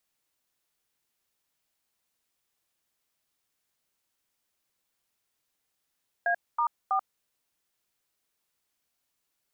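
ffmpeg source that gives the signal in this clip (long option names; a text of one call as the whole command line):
ffmpeg -f lavfi -i "aevalsrc='0.0531*clip(min(mod(t,0.324),0.086-mod(t,0.324))/0.002,0,1)*(eq(floor(t/0.324),0)*(sin(2*PI*697*mod(t,0.324))+sin(2*PI*1633*mod(t,0.324)))+eq(floor(t/0.324),1)*(sin(2*PI*941*mod(t,0.324))+sin(2*PI*1209*mod(t,0.324)))+eq(floor(t/0.324),2)*(sin(2*PI*770*mod(t,0.324))+sin(2*PI*1209*mod(t,0.324))))':duration=0.972:sample_rate=44100" out.wav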